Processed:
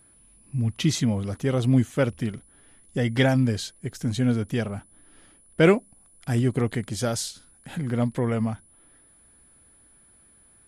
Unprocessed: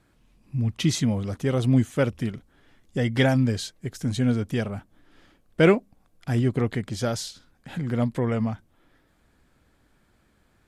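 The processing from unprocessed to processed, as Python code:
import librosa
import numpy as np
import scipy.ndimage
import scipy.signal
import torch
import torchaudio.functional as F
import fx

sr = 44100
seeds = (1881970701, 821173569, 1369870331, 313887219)

y = fx.peak_eq(x, sr, hz=9600.0, db=8.5, octaves=0.82, at=(5.65, 7.76))
y = y + 10.0 ** (-55.0 / 20.0) * np.sin(2.0 * np.pi * 10000.0 * np.arange(len(y)) / sr)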